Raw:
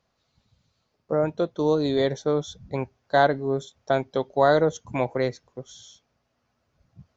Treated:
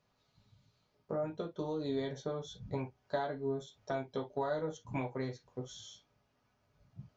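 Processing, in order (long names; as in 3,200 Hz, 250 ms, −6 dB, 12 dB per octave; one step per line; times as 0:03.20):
downward compressor 4 to 1, threshold −33 dBFS, peak gain reduction 16.5 dB
convolution reverb, pre-delay 3 ms, DRR −0.5 dB
level −5.5 dB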